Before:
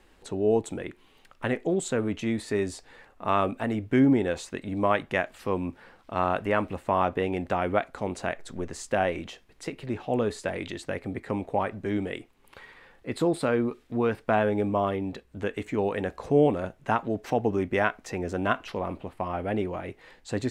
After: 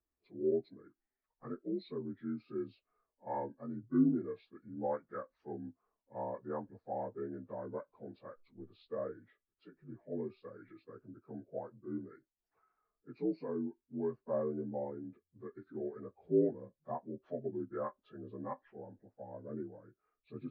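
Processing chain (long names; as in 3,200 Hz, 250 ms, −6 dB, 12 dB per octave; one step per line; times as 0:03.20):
partials spread apart or drawn together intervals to 81%
every bin expanded away from the loudest bin 1.5 to 1
level −8 dB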